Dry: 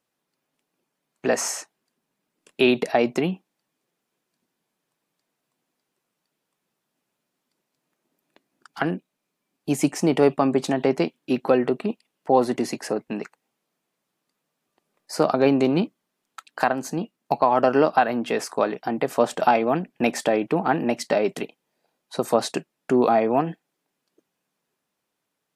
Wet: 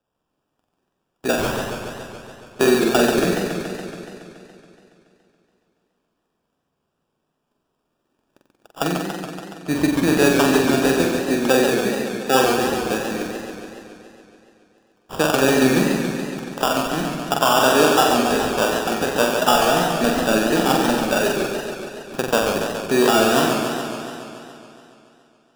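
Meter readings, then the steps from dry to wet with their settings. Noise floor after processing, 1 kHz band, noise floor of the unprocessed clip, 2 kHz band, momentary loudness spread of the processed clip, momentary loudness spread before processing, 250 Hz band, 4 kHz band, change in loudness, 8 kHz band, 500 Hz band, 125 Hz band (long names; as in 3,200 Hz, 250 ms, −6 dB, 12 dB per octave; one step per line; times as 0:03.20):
−75 dBFS, +3.5 dB, −80 dBFS, +8.5 dB, 16 LU, 12 LU, +4.0 dB, +11.5 dB, +3.5 dB, +8.0 dB, +3.0 dB, +4.5 dB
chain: decimation without filtering 21×
on a send: flutter between parallel walls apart 7.8 metres, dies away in 0.69 s
on the sum: feedback echo with a swinging delay time 141 ms, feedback 72%, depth 164 cents, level −6 dB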